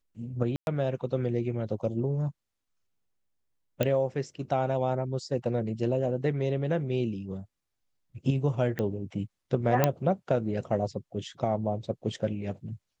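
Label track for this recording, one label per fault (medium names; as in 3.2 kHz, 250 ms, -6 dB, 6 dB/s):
0.560000	0.670000	dropout 111 ms
3.830000	3.830000	pop -13 dBFS
8.790000	8.790000	pop -18 dBFS
9.840000	9.840000	pop -8 dBFS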